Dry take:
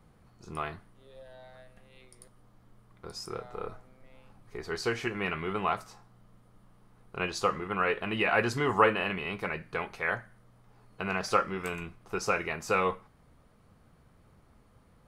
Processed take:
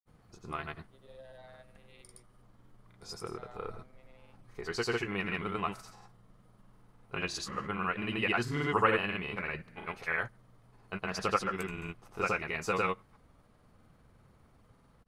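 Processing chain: dynamic bell 640 Hz, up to -5 dB, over -39 dBFS, Q 0.9; granulator, pitch spread up and down by 0 st

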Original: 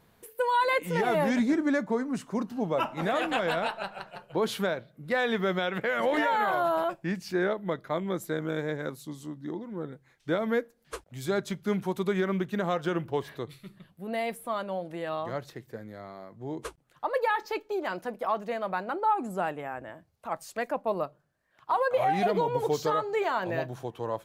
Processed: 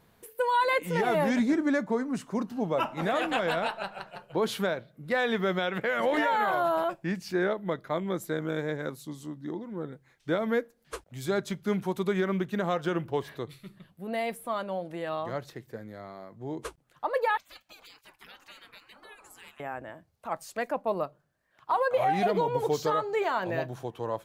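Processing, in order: 17.37–19.60 s: spectral gate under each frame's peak -25 dB weak

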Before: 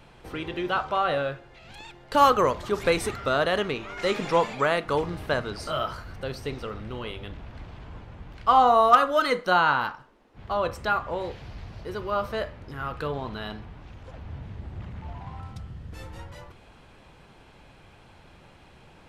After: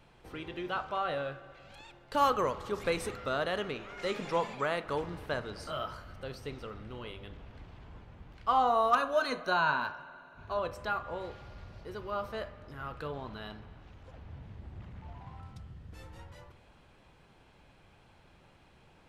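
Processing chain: 8.94–10.59 s: rippled EQ curve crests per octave 1.5, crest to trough 10 dB; reverberation RT60 2.5 s, pre-delay 46 ms, DRR 15.5 dB; trim -8.5 dB

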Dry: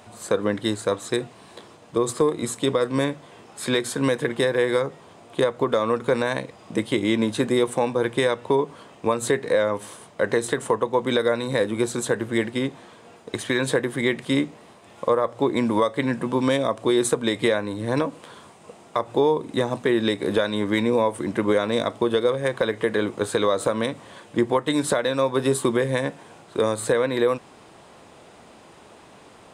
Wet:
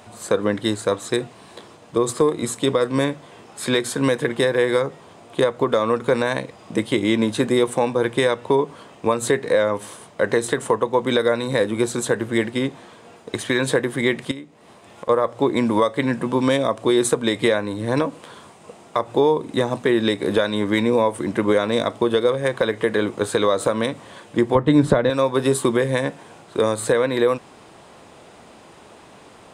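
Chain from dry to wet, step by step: 14.31–15.09 s: compression 8:1, threshold -35 dBFS, peak gain reduction 17.5 dB; 24.55–25.10 s: RIAA curve playback; trim +2.5 dB

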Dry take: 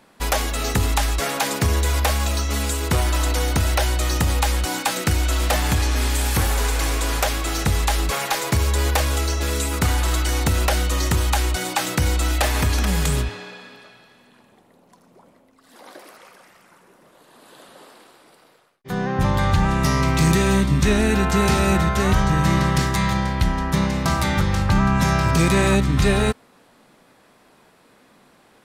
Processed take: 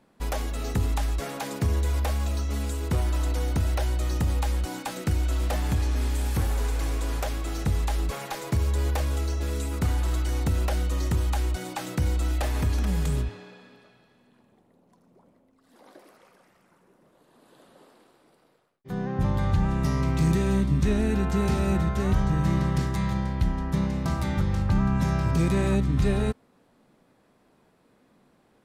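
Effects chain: tilt shelf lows +5 dB, about 640 Hz; trim -9 dB

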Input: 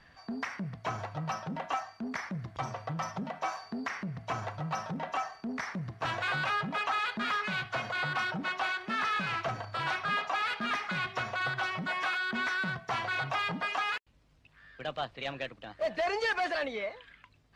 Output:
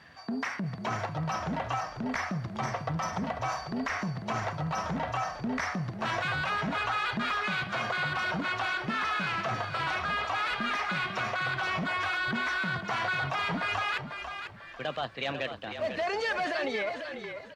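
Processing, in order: high-pass 92 Hz; in parallel at -2 dB: compressor with a negative ratio -36 dBFS, ratio -0.5; on the sum: frequency-shifting echo 495 ms, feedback 32%, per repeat -36 Hz, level -8 dB; trim -1.5 dB

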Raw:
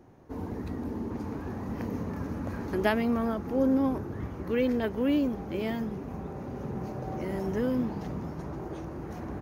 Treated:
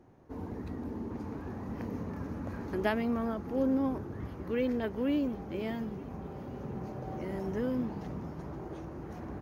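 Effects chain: treble shelf 5.1 kHz -4.5 dB; feedback echo behind a high-pass 707 ms, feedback 73%, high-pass 4.1 kHz, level -14.5 dB; trim -4 dB

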